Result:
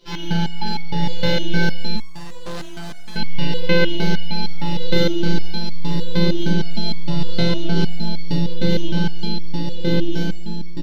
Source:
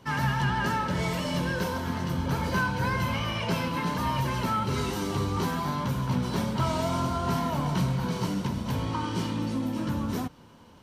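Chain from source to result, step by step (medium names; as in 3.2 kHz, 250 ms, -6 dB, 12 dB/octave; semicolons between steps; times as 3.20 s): in parallel at -11 dB: Schmitt trigger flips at -35.5 dBFS; on the sum: robot voice 171 Hz; FFT filter 120 Hz 0 dB, 380 Hz +10 dB, 560 Hz +8 dB, 1.1 kHz -11 dB, 4.2 kHz +15 dB, 8.1 kHz -7 dB; on a send: bouncing-ball echo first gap 490 ms, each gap 0.75×, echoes 5; on the sum: simulated room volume 110 m³, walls mixed, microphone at 3 m; 1.96–3.16 s: hard clipper -20.5 dBFS, distortion -10 dB; 6.48–7.83 s: low-pass 12 kHz 24 dB/octave; resonator arpeggio 6.5 Hz 64–1100 Hz; trim +2 dB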